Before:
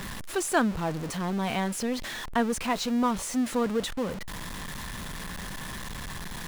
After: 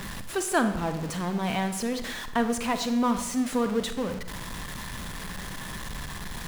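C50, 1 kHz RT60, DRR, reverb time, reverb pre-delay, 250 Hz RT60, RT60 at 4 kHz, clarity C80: 10.0 dB, 0.75 s, 8.5 dB, 0.80 s, 35 ms, 0.90 s, 0.65 s, 12.0 dB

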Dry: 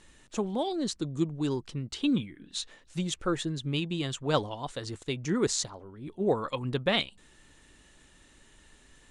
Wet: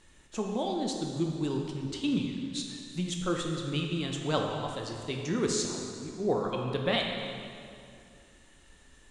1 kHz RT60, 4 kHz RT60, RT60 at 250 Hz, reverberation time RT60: 2.4 s, 1.9 s, 2.5 s, 2.4 s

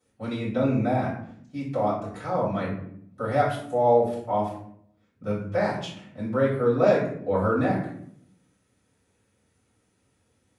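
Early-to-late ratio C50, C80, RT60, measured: 4.5 dB, 8.5 dB, 0.70 s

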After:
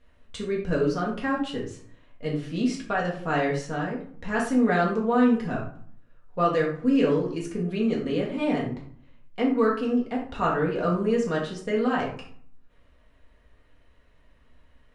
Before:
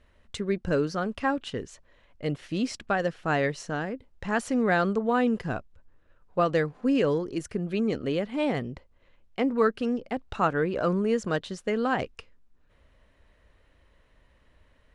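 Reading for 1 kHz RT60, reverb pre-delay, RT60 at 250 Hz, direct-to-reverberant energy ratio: 0.60 s, 4 ms, 0.80 s, -3.5 dB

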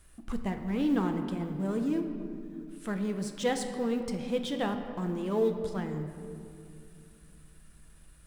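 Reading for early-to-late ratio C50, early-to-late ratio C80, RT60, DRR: 7.5 dB, 8.5 dB, 2.5 s, 5.0 dB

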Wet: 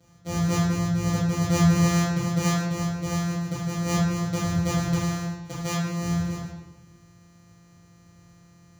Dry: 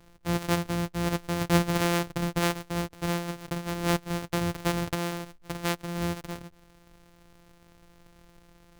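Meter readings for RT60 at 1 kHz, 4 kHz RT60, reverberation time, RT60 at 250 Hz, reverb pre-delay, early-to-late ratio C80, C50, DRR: 1.0 s, 0.80 s, 1.1 s, 1.5 s, 3 ms, 4.0 dB, 0.5 dB, -8.5 dB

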